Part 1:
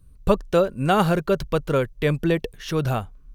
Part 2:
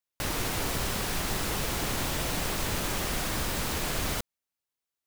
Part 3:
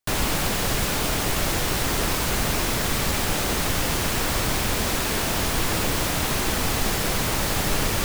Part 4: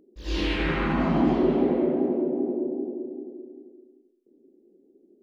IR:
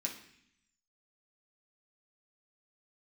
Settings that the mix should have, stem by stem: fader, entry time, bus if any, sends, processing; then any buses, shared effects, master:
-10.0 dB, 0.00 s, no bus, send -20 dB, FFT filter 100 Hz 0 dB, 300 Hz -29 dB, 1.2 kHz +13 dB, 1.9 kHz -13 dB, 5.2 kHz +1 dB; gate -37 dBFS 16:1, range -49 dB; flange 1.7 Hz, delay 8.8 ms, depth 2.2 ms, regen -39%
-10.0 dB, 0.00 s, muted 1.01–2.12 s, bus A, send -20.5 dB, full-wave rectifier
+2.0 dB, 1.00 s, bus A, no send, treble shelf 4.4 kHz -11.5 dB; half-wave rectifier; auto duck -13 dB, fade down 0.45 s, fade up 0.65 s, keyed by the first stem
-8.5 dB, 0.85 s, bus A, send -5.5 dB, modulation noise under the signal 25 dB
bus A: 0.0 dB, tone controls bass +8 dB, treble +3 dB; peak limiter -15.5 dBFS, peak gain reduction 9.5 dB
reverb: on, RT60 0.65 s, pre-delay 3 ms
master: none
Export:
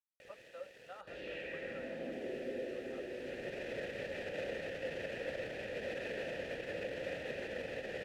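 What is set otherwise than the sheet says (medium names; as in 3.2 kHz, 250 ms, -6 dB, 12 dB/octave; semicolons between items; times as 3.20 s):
stem 3: missing half-wave rectifier; master: extra vowel filter e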